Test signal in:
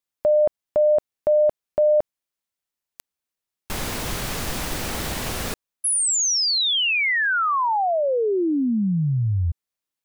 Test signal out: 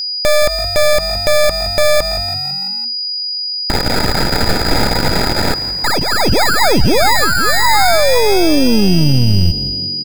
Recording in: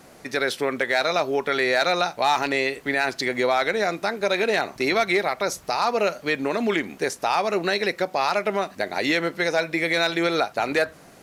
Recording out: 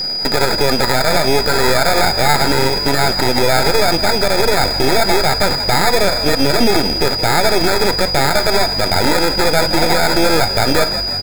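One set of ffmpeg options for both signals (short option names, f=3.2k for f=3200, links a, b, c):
-filter_complex "[0:a]acrossover=split=3900[a][b];[b]acompressor=threshold=-28dB:ratio=4:attack=1:release=60[c];[a][c]amix=inputs=2:normalize=0,equalizer=f=8.3k:t=o:w=0.21:g=-8,asplit=2[d][e];[e]acompressor=threshold=-32dB:ratio=6:attack=95:release=51,volume=-0.5dB[f];[d][f]amix=inputs=2:normalize=0,acrusher=samples=15:mix=1:aa=0.000001,aeval=exprs='max(val(0),0)':c=same,aeval=exprs='val(0)+0.0251*sin(2*PI*4900*n/s)':c=same,asuperstop=centerf=1100:order=12:qfactor=5.4,asplit=6[g][h][i][j][k][l];[h]adelay=168,afreqshift=47,volume=-17dB[m];[i]adelay=336,afreqshift=94,volume=-21.7dB[n];[j]adelay=504,afreqshift=141,volume=-26.5dB[o];[k]adelay=672,afreqshift=188,volume=-31.2dB[p];[l]adelay=840,afreqshift=235,volume=-35.9dB[q];[g][m][n][o][p][q]amix=inputs=6:normalize=0,alimiter=level_in=15dB:limit=-1dB:release=50:level=0:latency=1,volume=-1dB"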